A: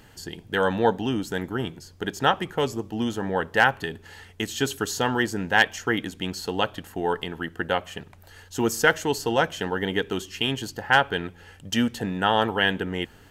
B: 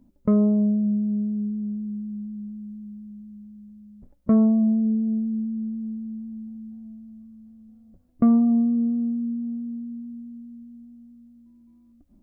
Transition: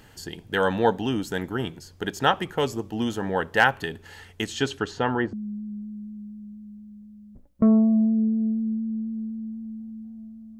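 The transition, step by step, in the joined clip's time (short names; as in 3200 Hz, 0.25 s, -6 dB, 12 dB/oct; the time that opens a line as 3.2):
A
4.44–5.33 LPF 9000 Hz -> 1100 Hz
5.33 switch to B from 2 s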